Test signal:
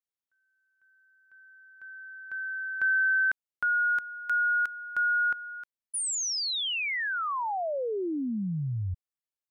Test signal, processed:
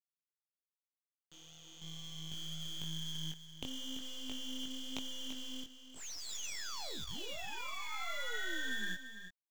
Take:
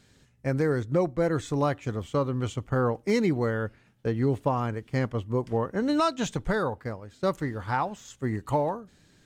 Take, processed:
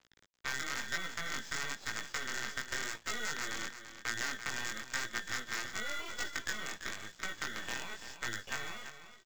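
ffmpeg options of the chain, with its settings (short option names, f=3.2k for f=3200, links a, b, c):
-filter_complex "[0:a]acrossover=split=290[a][b];[b]acompressor=threshold=-41dB:ratio=6:attack=18:release=41:knee=2.83:detection=peak[c];[a][c]amix=inputs=2:normalize=0,aeval=exprs='val(0)*sin(2*PI*1700*n/s)':c=same,acompressor=threshold=-35dB:ratio=4:attack=7.6:release=246:knee=6:detection=rms,aresample=16000,acrusher=bits=6:dc=4:mix=0:aa=0.000001,aresample=44100,flanger=delay=17:depth=6.6:speed=0.97,acrossover=split=520|2200[d][e][f];[f]acrusher=bits=3:mode=log:mix=0:aa=0.000001[g];[d][e][g]amix=inputs=3:normalize=0,aecho=1:1:338:0.299,adynamicequalizer=threshold=0.00141:dfrequency=5800:dqfactor=0.7:tfrequency=5800:tqfactor=0.7:attack=5:release=100:ratio=0.375:range=2.5:mode=boostabove:tftype=highshelf,volume=5dB"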